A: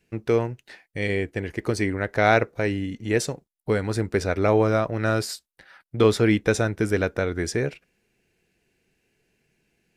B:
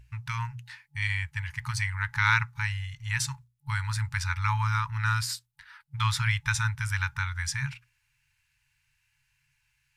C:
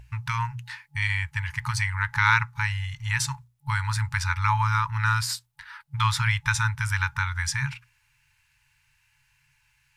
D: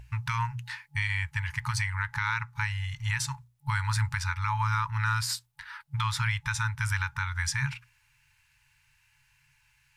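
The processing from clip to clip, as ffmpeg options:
-af "aeval=exprs='val(0)+0.00447*(sin(2*PI*60*n/s)+sin(2*PI*2*60*n/s)/2+sin(2*PI*3*60*n/s)/3+sin(2*PI*4*60*n/s)/4+sin(2*PI*5*60*n/s)/5)':c=same,bandreject=f=60:t=h:w=6,bandreject=f=120:t=h:w=6,bandreject=f=180:t=h:w=6,bandreject=f=240:t=h:w=6,bandreject=f=300:t=h:w=6,bandreject=f=360:t=h:w=6,bandreject=f=420:t=h:w=6,afftfilt=real='re*(1-between(b*sr/4096,140,850))':imag='im*(1-between(b*sr/4096,140,850))':win_size=4096:overlap=0.75"
-filter_complex "[0:a]equalizer=f=760:w=1.1:g=6.5,asplit=2[s0][s1];[s1]acompressor=threshold=0.02:ratio=6,volume=0.944[s2];[s0][s2]amix=inputs=2:normalize=0"
-af "alimiter=limit=0.126:level=0:latency=1:release=350"

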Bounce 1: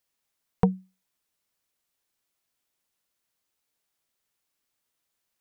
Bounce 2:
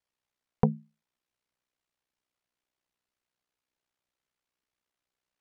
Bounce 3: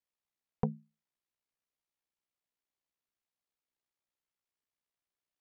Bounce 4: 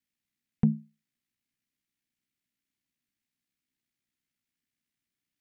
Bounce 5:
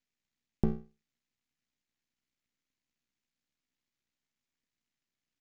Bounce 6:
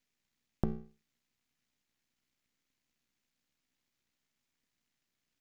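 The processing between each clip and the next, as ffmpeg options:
-af "aemphasis=mode=reproduction:type=50fm,aeval=exprs='val(0)*sin(2*PI*31*n/s)':c=same"
-af "bandreject=f=1500:w=21,volume=0.398"
-filter_complex "[0:a]equalizer=f=125:t=o:w=1:g=5,equalizer=f=250:t=o:w=1:g=12,equalizer=f=500:t=o:w=1:g=-11,equalizer=f=1000:t=o:w=1:g=-10,equalizer=f=2000:t=o:w=1:g=5,asplit=2[s0][s1];[s1]alimiter=limit=0.0794:level=0:latency=1:release=25,volume=1.12[s2];[s0][s2]amix=inputs=2:normalize=0,volume=0.75"
-af "acompressor=threshold=0.0708:ratio=6,aresample=16000,aeval=exprs='max(val(0),0)':c=same,aresample=44100,volume=1.5"
-af "acompressor=threshold=0.0178:ratio=3,volume=1.78"

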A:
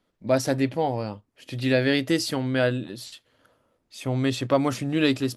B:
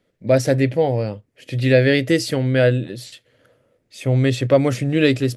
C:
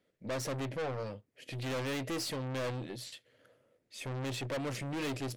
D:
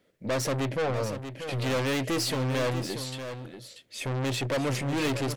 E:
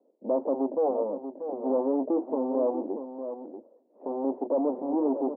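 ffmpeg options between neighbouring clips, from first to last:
-af "equalizer=f=125:t=o:w=1:g=10,equalizer=f=500:t=o:w=1:g=10,equalizer=f=1000:t=o:w=1:g=-7,equalizer=f=2000:t=o:w=1:g=8,equalizer=f=8000:t=o:w=1:g=3"
-af "aeval=exprs='(tanh(20*val(0)+0.35)-tanh(0.35))/20':c=same,lowshelf=f=120:g=-9.5,volume=0.473"
-af "aecho=1:1:637:0.335,volume=2.51"
-af "asuperpass=centerf=470:order=12:qfactor=0.67,volume=1.5"

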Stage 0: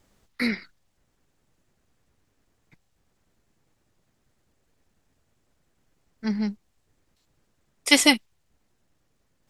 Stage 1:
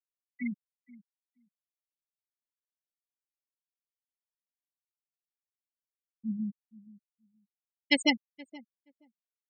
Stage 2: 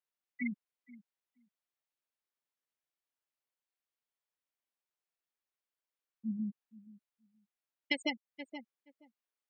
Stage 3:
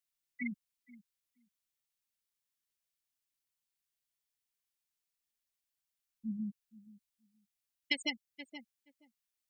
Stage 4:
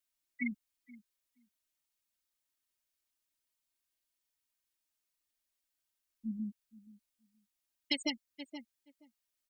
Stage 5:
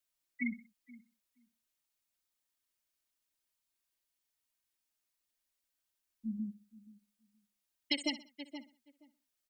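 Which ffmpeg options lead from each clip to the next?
-filter_complex "[0:a]afftfilt=real='re*gte(hypot(re,im),0.251)':imag='im*gte(hypot(re,im),0.251)':win_size=1024:overlap=0.75,asplit=2[s0][s1];[s1]adelay=474,lowpass=f=1100:p=1,volume=0.106,asplit=2[s2][s3];[s3]adelay=474,lowpass=f=1100:p=1,volume=0.15[s4];[s0][s2][s4]amix=inputs=3:normalize=0,volume=0.447"
-af "bass=f=250:g=-10,treble=f=4000:g=-8,acompressor=threshold=0.02:ratio=10,volume=1.58"
-af "equalizer=f=610:w=0.32:g=-14,volume=2.11"
-af "aecho=1:1:3.2:0.79"
-af "aecho=1:1:63|126|189:0.168|0.0621|0.023"

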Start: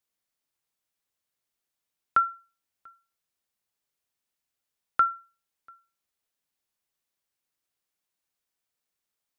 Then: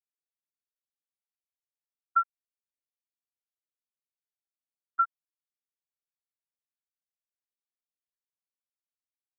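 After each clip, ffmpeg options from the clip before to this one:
-af "asubboost=boost=11:cutoff=250,afftfilt=real='re*gte(hypot(re,im),0.501)':imag='im*gte(hypot(re,im),0.501)':win_size=1024:overlap=0.75"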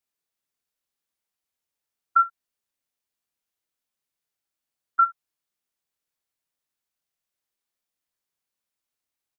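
-filter_complex "[0:a]acompressor=threshold=0.0501:ratio=2.5,asplit=2[s0][s1];[s1]aecho=0:1:28|66:0.398|0.141[s2];[s0][s2]amix=inputs=2:normalize=0,volume=2.66"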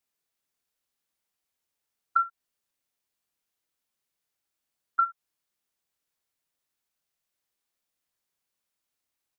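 -af "acompressor=threshold=0.0631:ratio=5,volume=1.26"

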